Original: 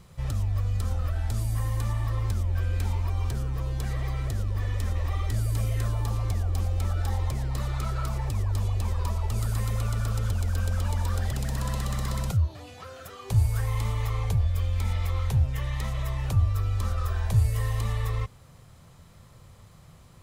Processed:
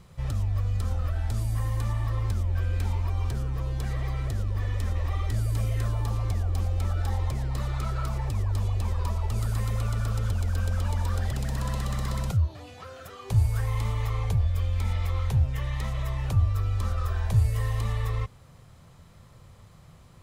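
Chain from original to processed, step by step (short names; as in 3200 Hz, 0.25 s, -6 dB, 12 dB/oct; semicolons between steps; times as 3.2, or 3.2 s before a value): high shelf 5900 Hz -4.5 dB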